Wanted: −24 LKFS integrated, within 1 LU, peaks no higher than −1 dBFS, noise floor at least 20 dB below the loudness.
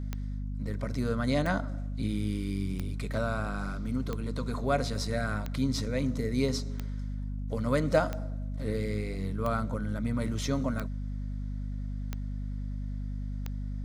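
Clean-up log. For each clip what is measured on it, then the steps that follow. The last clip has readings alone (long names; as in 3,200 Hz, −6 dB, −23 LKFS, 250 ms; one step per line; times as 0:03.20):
number of clicks 11; mains hum 50 Hz; hum harmonics up to 250 Hz; level of the hum −32 dBFS; integrated loudness −32.5 LKFS; sample peak −11.0 dBFS; target loudness −24.0 LKFS
→ click removal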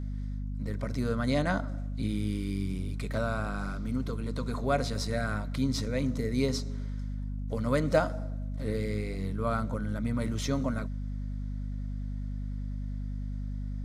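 number of clicks 0; mains hum 50 Hz; hum harmonics up to 250 Hz; level of the hum −32 dBFS
→ mains-hum notches 50/100/150/200/250 Hz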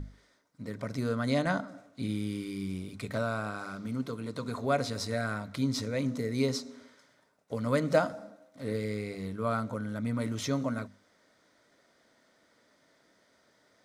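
mains hum none found; integrated loudness −33.0 LKFS; sample peak −12.5 dBFS; target loudness −24.0 LKFS
→ level +9 dB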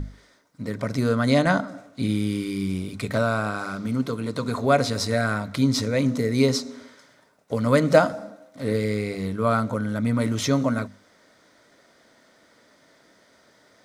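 integrated loudness −24.0 LKFS; sample peak −3.5 dBFS; background noise floor −59 dBFS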